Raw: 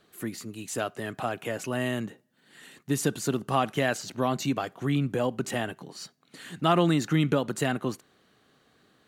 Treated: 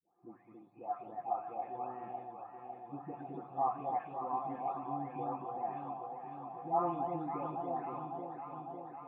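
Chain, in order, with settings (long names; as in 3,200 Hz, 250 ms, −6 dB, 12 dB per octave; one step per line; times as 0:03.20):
every frequency bin delayed by itself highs late, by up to 638 ms
formant resonators in series a
delay that swaps between a low-pass and a high-pass 276 ms, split 820 Hz, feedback 84%, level −4.5 dB
convolution reverb RT60 1.1 s, pre-delay 3 ms, DRR 14 dB
level +1.5 dB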